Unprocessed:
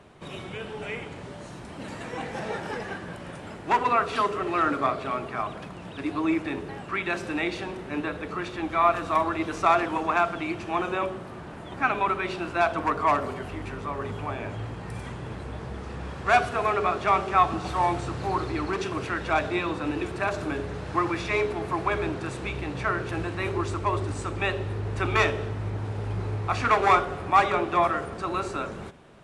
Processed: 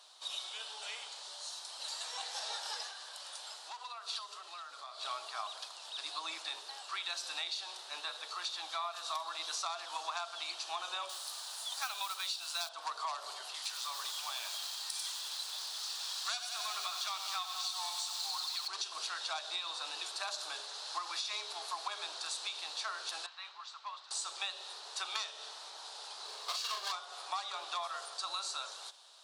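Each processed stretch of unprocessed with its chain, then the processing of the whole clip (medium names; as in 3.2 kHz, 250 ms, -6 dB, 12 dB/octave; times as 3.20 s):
2.87–5.03 s: bass shelf 170 Hz -9 dB + compression, threshold -36 dBFS
11.09–12.69 s: RIAA curve recording + modulation noise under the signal 23 dB
13.54–18.68 s: tilt shelf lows -8 dB, about 1.2 kHz + bit-crushed delay 92 ms, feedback 80%, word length 7-bit, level -9.5 dB
23.26–24.11 s: high-pass 1.3 kHz + tape spacing loss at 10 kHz 32 dB
26.25–26.92 s: comb filter that takes the minimum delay 1.8 ms + peaking EQ 400 Hz +7.5 dB 0.35 oct + doubling 37 ms -4.5 dB
whole clip: high-pass 780 Hz 24 dB/octave; resonant high shelf 3 kHz +11.5 dB, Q 3; compression 16:1, threshold -29 dBFS; trim -5.5 dB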